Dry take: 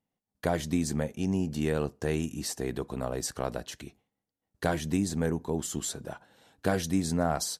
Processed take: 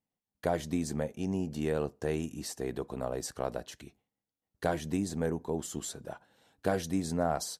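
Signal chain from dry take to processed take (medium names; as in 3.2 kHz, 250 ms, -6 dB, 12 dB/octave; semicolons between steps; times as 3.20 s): dynamic bell 580 Hz, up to +5 dB, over -42 dBFS, Q 0.75; trim -5.5 dB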